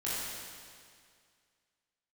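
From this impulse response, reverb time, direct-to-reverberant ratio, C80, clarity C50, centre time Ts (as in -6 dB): 2.1 s, -10.0 dB, -1.5 dB, -4.0 dB, 0.147 s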